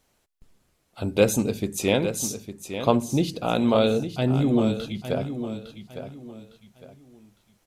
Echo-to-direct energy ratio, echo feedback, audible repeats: −9.5 dB, 30%, 3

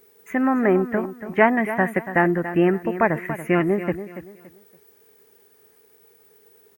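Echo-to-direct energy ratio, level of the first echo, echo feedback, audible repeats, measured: −11.5 dB, −12.0 dB, 29%, 3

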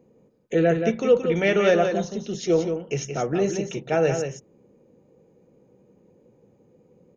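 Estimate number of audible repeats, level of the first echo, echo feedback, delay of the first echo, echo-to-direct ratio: 1, −7.0 dB, repeats not evenly spaced, 175 ms, −7.0 dB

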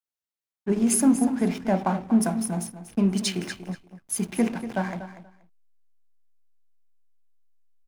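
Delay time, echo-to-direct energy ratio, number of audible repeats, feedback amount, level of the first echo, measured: 239 ms, −12.5 dB, 2, 17%, −12.5 dB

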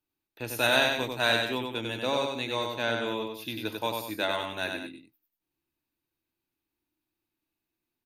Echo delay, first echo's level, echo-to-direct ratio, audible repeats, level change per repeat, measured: 95 ms, −4.0 dB, −3.5 dB, 2, −7.5 dB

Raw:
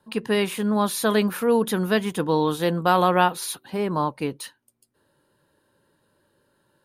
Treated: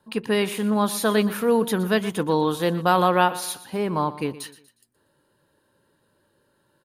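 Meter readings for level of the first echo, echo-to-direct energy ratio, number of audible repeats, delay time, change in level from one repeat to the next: −16.0 dB, −15.5 dB, 3, 120 ms, −8.5 dB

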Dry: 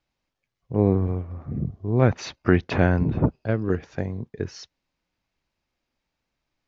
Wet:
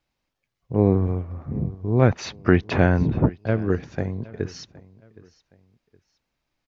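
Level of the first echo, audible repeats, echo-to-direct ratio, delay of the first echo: −21.5 dB, 2, −21.0 dB, 767 ms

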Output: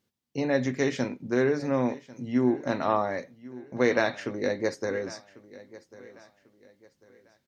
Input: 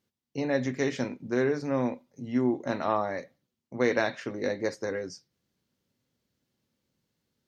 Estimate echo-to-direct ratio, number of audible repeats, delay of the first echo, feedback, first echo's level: −18.5 dB, 2, 1,095 ms, 33%, −19.0 dB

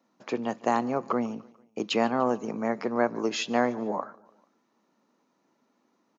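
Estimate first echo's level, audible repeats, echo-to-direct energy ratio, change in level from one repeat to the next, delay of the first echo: −23.0 dB, 3, −22.0 dB, −6.0 dB, 147 ms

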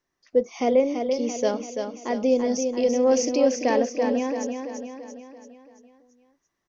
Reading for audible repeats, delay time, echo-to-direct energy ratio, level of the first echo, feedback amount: 5, 337 ms, −4.5 dB, −6.0 dB, 51%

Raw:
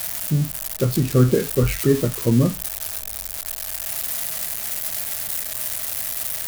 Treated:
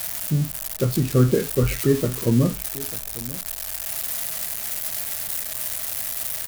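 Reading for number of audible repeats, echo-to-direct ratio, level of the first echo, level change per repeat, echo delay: 1, −18.0 dB, −18.0 dB, repeats not evenly spaced, 894 ms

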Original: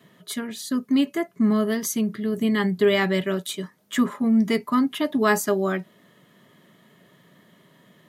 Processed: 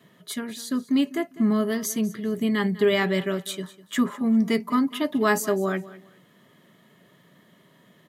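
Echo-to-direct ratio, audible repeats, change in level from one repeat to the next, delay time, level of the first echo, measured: −18.0 dB, 2, −13.0 dB, 200 ms, −18.0 dB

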